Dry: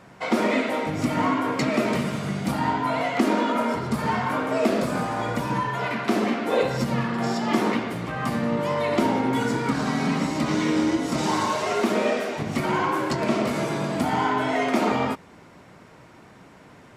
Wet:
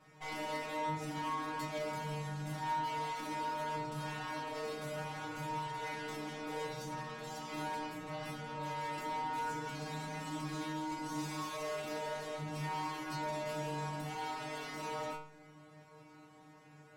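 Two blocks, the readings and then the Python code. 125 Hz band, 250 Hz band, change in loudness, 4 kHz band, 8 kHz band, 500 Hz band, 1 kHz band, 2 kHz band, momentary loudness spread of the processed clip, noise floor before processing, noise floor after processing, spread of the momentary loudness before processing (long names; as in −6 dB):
−14.0 dB, −20.5 dB, −15.5 dB, −12.5 dB, −12.0 dB, −17.0 dB, −12.5 dB, −14.5 dB, 6 LU, −49 dBFS, −58 dBFS, 4 LU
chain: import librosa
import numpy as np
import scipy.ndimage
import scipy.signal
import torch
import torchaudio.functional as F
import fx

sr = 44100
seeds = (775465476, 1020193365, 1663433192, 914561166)

y = fx.tube_stage(x, sr, drive_db=34.0, bias=0.75)
y = fx.stiff_resonator(y, sr, f0_hz=150.0, decay_s=0.6, stiffness=0.002)
y = y * 10.0 ** (8.5 / 20.0)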